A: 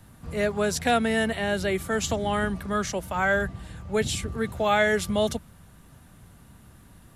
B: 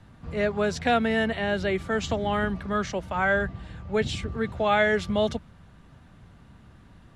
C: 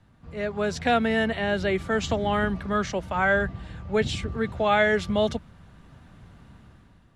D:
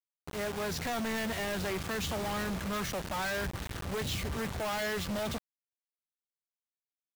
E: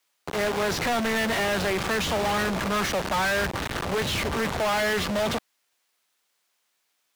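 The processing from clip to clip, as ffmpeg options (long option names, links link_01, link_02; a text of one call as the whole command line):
ffmpeg -i in.wav -af "lowpass=4200" out.wav
ffmpeg -i in.wav -af "dynaudnorm=framelen=160:gausssize=7:maxgain=9dB,volume=-7dB" out.wav
ffmpeg -i in.wav -af "alimiter=limit=-16dB:level=0:latency=1,aresample=16000,volume=27dB,asoftclip=hard,volume=-27dB,aresample=44100,acrusher=bits=5:mix=0:aa=0.000001,volume=-2.5dB" out.wav
ffmpeg -i in.wav -filter_complex "[0:a]asplit=2[link_01][link_02];[link_02]highpass=frequency=720:poles=1,volume=27dB,asoftclip=type=tanh:threshold=-26dB[link_03];[link_01][link_03]amix=inputs=2:normalize=0,lowpass=frequency=5700:poles=1,volume=-6dB,acrossover=split=310|2100[link_04][link_05][link_06];[link_06]volume=33.5dB,asoftclip=hard,volume=-33.5dB[link_07];[link_04][link_05][link_07]amix=inputs=3:normalize=0,volume=6dB" out.wav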